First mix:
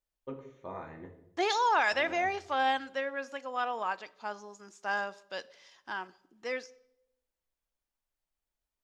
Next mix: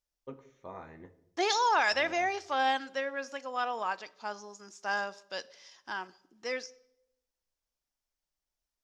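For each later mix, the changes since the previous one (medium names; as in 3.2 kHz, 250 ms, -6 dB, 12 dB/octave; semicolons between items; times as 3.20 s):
first voice: send -9.0 dB; master: add peaking EQ 5.5 kHz +8 dB 0.58 oct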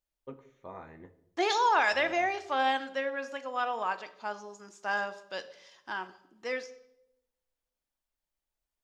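second voice: send +8.0 dB; master: add peaking EQ 5.5 kHz -8 dB 0.58 oct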